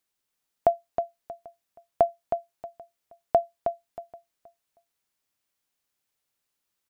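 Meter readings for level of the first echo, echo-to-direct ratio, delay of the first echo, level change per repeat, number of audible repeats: -7.0 dB, -6.5 dB, 316 ms, -12.0 dB, 2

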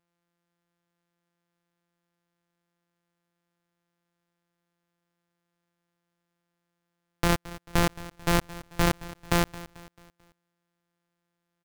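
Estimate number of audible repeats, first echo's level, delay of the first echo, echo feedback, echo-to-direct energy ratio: 3, -18.0 dB, 220 ms, 45%, -17.0 dB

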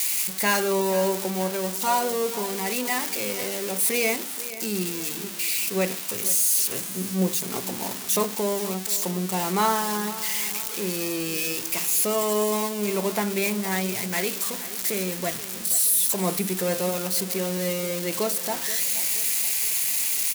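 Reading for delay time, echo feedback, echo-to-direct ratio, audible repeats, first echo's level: 477 ms, 47%, -14.5 dB, 3, -15.5 dB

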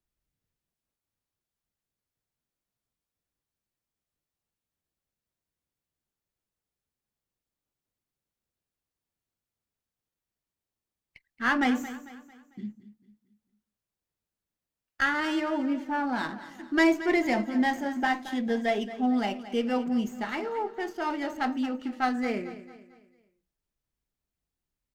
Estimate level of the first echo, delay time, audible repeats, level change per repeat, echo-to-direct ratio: -14.5 dB, 224 ms, 3, -7.5 dB, -13.5 dB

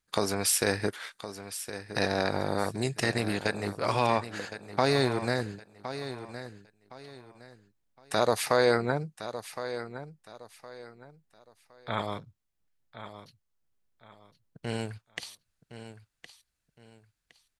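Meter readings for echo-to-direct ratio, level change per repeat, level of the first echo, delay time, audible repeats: -11.5 dB, -11.0 dB, -12.0 dB, 1064 ms, 3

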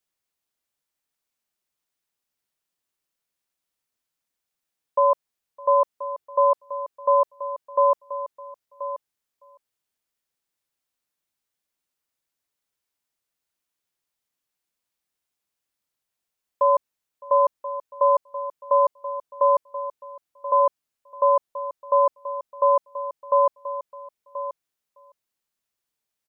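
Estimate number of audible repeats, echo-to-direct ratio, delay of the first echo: 3, -12.0 dB, 610 ms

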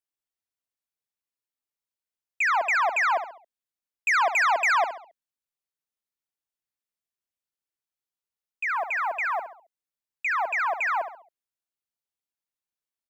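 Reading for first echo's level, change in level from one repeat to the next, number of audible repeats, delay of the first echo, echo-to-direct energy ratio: -10.0 dB, -8.0 dB, 4, 68 ms, -9.5 dB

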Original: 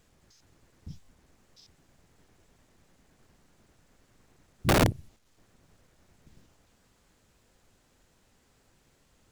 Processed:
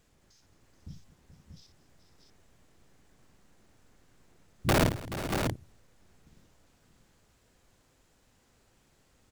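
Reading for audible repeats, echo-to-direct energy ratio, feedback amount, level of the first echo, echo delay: 5, -3.0 dB, no regular repeats, -8.5 dB, 56 ms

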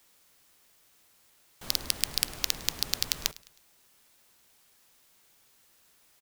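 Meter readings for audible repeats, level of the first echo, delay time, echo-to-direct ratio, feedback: 2, -21.0 dB, 105 ms, -20.0 dB, 41%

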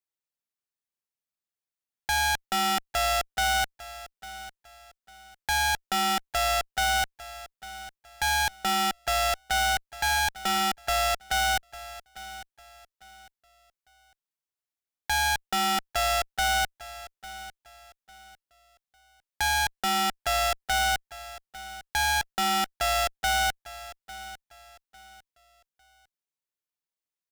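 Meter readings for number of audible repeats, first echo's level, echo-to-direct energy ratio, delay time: 2, -16.5 dB, -16.0 dB, 851 ms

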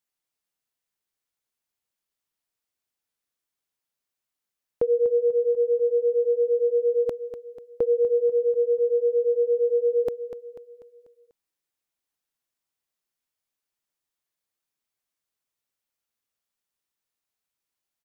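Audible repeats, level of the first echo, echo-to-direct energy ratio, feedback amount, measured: 4, -11.0 dB, -10.0 dB, 47%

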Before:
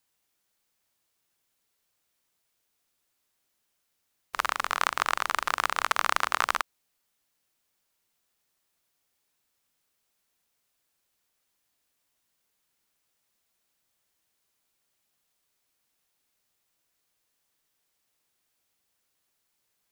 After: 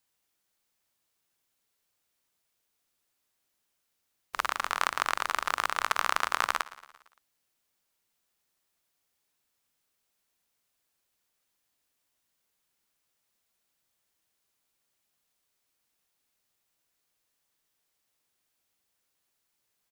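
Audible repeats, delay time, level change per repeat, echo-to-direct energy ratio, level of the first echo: 4, 114 ms, -4.5 dB, -17.0 dB, -19.0 dB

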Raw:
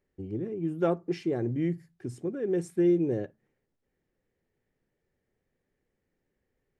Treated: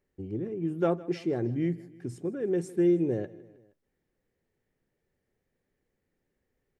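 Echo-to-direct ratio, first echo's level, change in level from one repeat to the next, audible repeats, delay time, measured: -18.5 dB, -20.0 dB, -5.0 dB, 3, 157 ms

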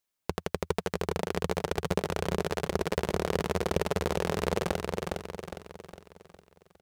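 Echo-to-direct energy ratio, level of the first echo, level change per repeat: -2.0 dB, -3.0 dB, -6.5 dB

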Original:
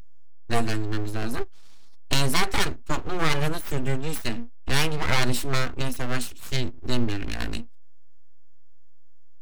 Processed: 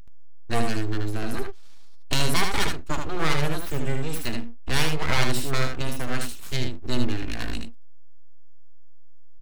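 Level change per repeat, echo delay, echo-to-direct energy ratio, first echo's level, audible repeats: no regular repeats, 77 ms, -5.0 dB, -5.0 dB, 1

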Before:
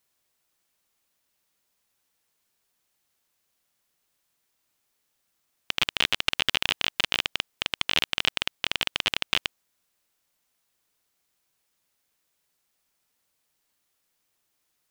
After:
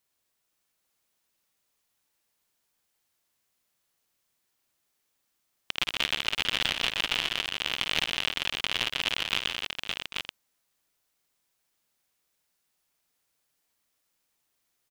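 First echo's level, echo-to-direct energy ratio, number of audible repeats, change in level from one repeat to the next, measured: -10.0 dB, -1.0 dB, 6, no regular repeats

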